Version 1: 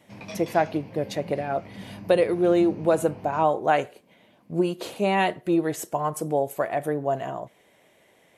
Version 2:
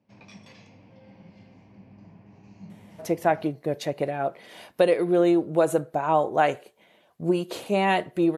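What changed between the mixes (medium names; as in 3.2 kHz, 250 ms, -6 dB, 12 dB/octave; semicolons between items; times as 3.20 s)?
speech: entry +2.70 s; background -9.0 dB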